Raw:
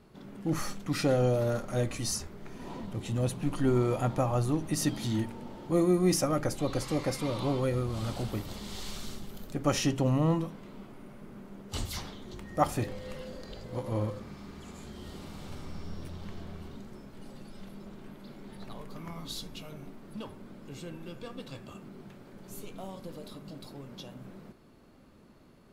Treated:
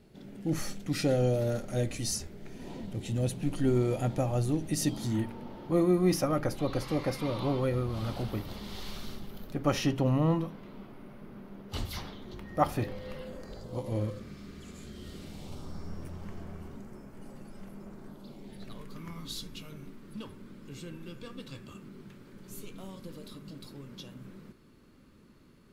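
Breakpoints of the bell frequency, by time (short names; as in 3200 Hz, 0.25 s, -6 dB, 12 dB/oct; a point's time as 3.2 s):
bell -11 dB 0.72 oct
4.83 s 1100 Hz
5.28 s 7700 Hz
13.15 s 7700 Hz
14.05 s 870 Hz
15.2 s 870 Hz
15.93 s 3800 Hz
17.88 s 3800 Hz
18.81 s 710 Hz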